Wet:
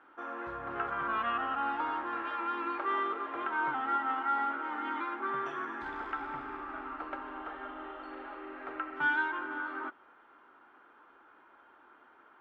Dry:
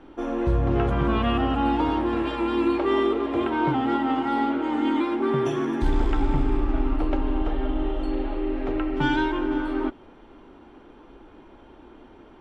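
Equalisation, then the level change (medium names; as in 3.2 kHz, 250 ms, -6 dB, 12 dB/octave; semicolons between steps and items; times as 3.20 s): band-pass filter 1.4 kHz, Q 3; +2.0 dB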